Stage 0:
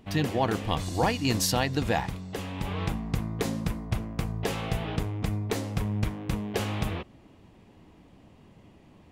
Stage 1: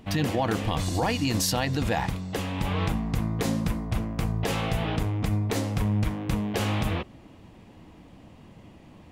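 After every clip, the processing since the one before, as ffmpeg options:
-af "bandreject=f=400:w=12,alimiter=limit=0.0891:level=0:latency=1:release=45,volume=1.78"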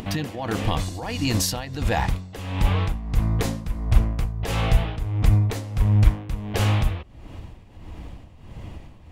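-af "asubboost=boost=5:cutoff=87,acompressor=mode=upward:threshold=0.0251:ratio=2.5,tremolo=f=1.5:d=0.74,volume=1.58"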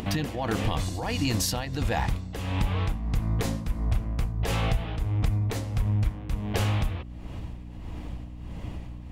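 -af "acompressor=threshold=0.0794:ratio=6,aeval=exprs='val(0)+0.0112*(sin(2*PI*60*n/s)+sin(2*PI*2*60*n/s)/2+sin(2*PI*3*60*n/s)/3+sin(2*PI*4*60*n/s)/4+sin(2*PI*5*60*n/s)/5)':c=same"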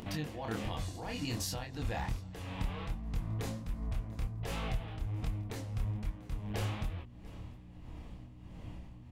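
-af "flanger=delay=22.5:depth=5.8:speed=1.3,aecho=1:1:692:0.075,volume=0.447"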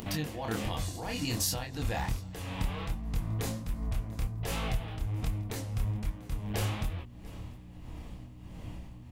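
-af "crystalizer=i=1:c=0,volume=1.5"

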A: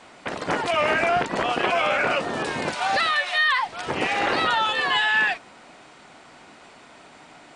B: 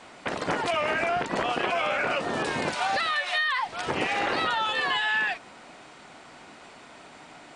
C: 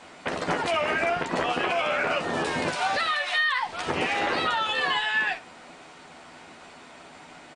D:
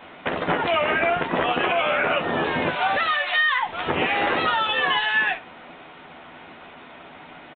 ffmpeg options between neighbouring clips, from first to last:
-af "acompressor=threshold=0.0708:ratio=6"
-af "aecho=1:1:12|66:0.473|0.158"
-af "aresample=8000,aresample=44100,volume=1.58"

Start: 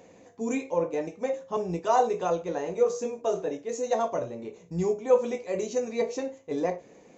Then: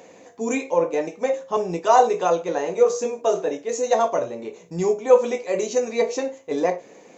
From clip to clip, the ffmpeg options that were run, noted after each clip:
-af "highpass=f=370:p=1,volume=2.66"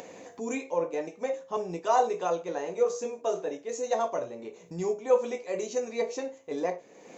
-af "acompressor=mode=upward:threshold=0.0398:ratio=2.5,volume=0.376"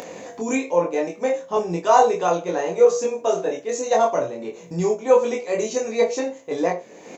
-filter_complex "[0:a]asplit=2[s0][s1];[s1]adelay=23,volume=0.794[s2];[s0][s2]amix=inputs=2:normalize=0,volume=2.37"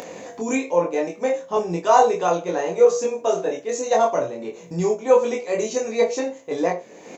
-af anull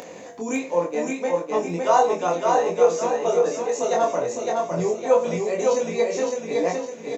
-af "aecho=1:1:559|1118|1677|2236|2795|3354:0.708|0.311|0.137|0.0603|0.0265|0.0117,volume=0.708"

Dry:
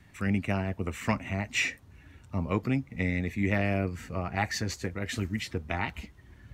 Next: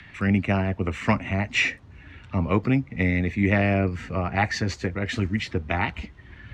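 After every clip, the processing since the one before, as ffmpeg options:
-filter_complex "[0:a]acrossover=split=100|1600|3300[s0][s1][s2][s3];[s2]acompressor=mode=upward:threshold=0.00562:ratio=2.5[s4];[s3]lowpass=4800[s5];[s0][s1][s4][s5]amix=inputs=4:normalize=0,volume=2.11"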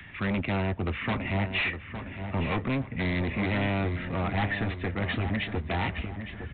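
-filter_complex "[0:a]aresample=8000,asoftclip=type=hard:threshold=0.0531,aresample=44100,asplit=2[s0][s1];[s1]adelay=862,lowpass=f=3100:p=1,volume=0.355,asplit=2[s2][s3];[s3]adelay=862,lowpass=f=3100:p=1,volume=0.43,asplit=2[s4][s5];[s5]adelay=862,lowpass=f=3100:p=1,volume=0.43,asplit=2[s6][s7];[s7]adelay=862,lowpass=f=3100:p=1,volume=0.43,asplit=2[s8][s9];[s9]adelay=862,lowpass=f=3100:p=1,volume=0.43[s10];[s0][s2][s4][s6][s8][s10]amix=inputs=6:normalize=0"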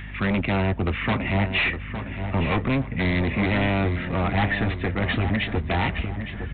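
-af "aeval=exprs='val(0)+0.00891*(sin(2*PI*50*n/s)+sin(2*PI*2*50*n/s)/2+sin(2*PI*3*50*n/s)/3+sin(2*PI*4*50*n/s)/4+sin(2*PI*5*50*n/s)/5)':c=same,volume=1.88"

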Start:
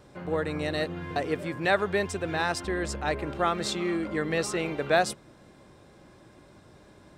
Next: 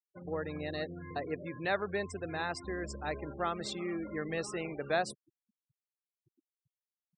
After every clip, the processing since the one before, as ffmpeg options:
-af "afftfilt=real='re*gte(hypot(re,im),0.0224)':imag='im*gte(hypot(re,im),0.0224)':win_size=1024:overlap=0.75,volume=0.398"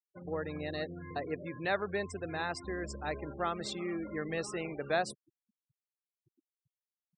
-af anull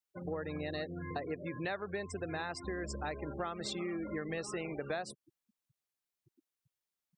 -af "acompressor=threshold=0.0112:ratio=6,volume=1.58"

